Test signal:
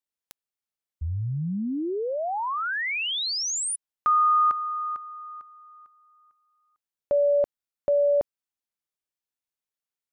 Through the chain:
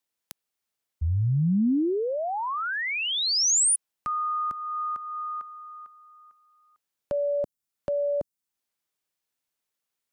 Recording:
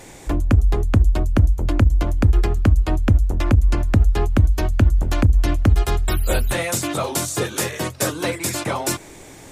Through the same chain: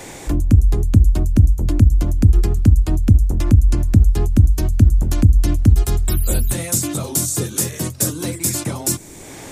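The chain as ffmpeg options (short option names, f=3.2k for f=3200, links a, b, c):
-filter_complex "[0:a]lowshelf=f=86:g=-6,acrossover=split=290|5500[a][b][c];[b]acompressor=threshold=-35dB:ratio=6:attack=0.3:release=398:knee=1:detection=rms[d];[a][d][c]amix=inputs=3:normalize=0,volume=7dB"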